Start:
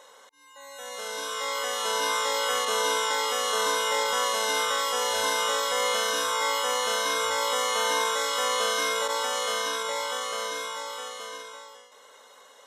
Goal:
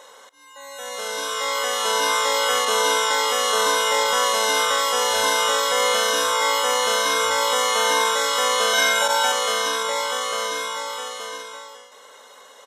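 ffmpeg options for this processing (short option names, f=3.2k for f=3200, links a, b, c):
-filter_complex "[0:a]asettb=1/sr,asplit=3[a][b][c];[a]atrim=end=8.734[d];[b]atrim=start=8.73:end=9.32,asetpts=PTS-STARTPTS,afade=t=in:d=0.004:c=qsin,afade=t=out:st=0.586:d=0.004:c=qsin,aecho=1:1:1.3:0.95,atrim=end_sample=26019[e];[c]atrim=start=9.316[f];[d][e]acrossfade=d=0.004:c1=hsin:c2=qsin[g];[g][f]acrossfade=d=0.004:c1=qsin:c2=hsin,aecho=1:1:162|324|486|648:0.0944|0.0491|0.0255|0.0133,volume=6dB"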